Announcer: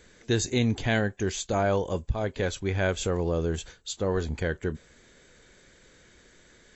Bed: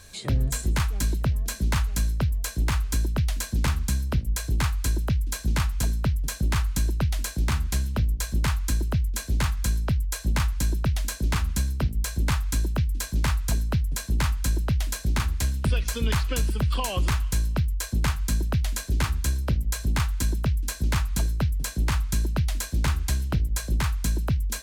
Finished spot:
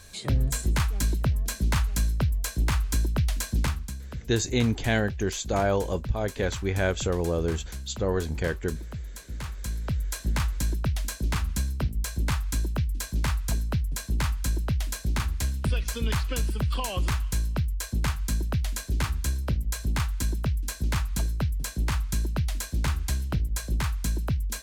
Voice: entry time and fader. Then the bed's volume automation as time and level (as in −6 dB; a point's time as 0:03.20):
4.00 s, +0.5 dB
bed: 0:03.60 −0.5 dB
0:03.95 −12 dB
0:09.35 −12 dB
0:10.05 −2.5 dB